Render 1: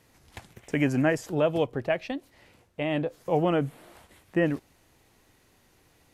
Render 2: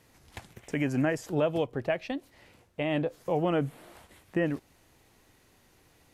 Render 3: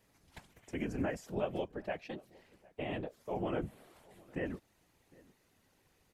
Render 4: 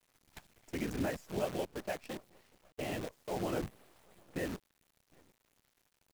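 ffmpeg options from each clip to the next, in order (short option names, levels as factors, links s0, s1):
-af "alimiter=limit=0.141:level=0:latency=1:release=309"
-filter_complex "[0:a]afftfilt=real='hypot(re,im)*cos(2*PI*random(0))':imag='hypot(re,im)*sin(2*PI*random(1))':win_size=512:overlap=0.75,asplit=2[s0][s1];[s1]adelay=758,volume=0.0631,highshelf=f=4000:g=-17.1[s2];[s0][s2]amix=inputs=2:normalize=0,volume=0.708"
-af "acrusher=bits=8:dc=4:mix=0:aa=0.000001"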